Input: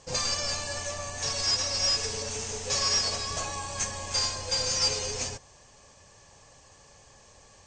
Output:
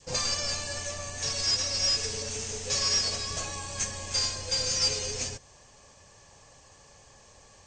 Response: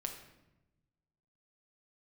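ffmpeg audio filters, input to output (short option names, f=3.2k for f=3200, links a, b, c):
-af "adynamicequalizer=threshold=0.00282:dfrequency=900:dqfactor=1.2:tfrequency=900:tqfactor=1.2:attack=5:release=100:ratio=0.375:range=3:mode=cutabove:tftype=bell"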